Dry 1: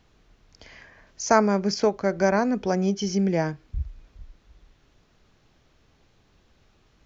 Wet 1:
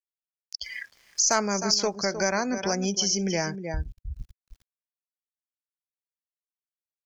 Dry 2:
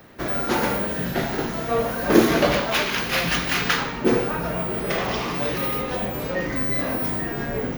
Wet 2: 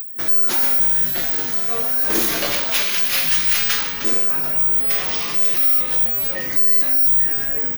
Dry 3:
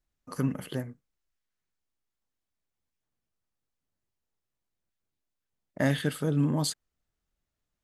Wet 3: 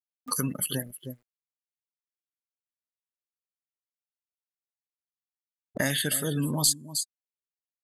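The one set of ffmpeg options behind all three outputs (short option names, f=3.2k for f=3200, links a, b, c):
-af "crystalizer=i=9:c=0,aeval=exprs='(tanh(1.41*val(0)+0.1)-tanh(0.1))/1.41':c=same,aeval=exprs='val(0)*gte(abs(val(0)),0.0119)':c=same,aecho=1:1:310:0.237,afftdn=nr=26:nf=-34,acompressor=mode=upward:threshold=-11dB:ratio=2.5,volume=-8.5dB"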